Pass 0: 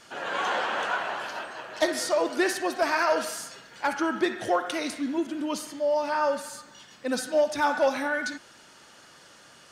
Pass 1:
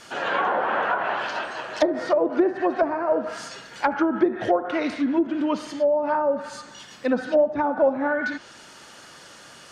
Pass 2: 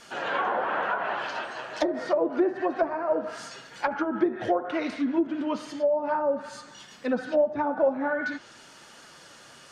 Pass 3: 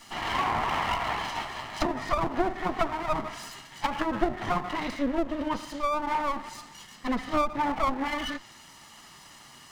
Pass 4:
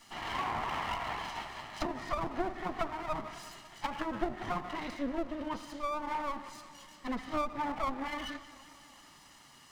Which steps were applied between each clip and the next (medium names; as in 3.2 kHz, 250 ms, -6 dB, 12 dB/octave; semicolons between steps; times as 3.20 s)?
low-pass that closes with the level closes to 600 Hz, closed at -21.5 dBFS; trim +6.5 dB
flange 1 Hz, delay 4.1 ms, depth 4.8 ms, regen -52%
comb filter that takes the minimum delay 1 ms; trim +1.5 dB
modulated delay 182 ms, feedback 69%, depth 95 cents, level -18 dB; trim -7.5 dB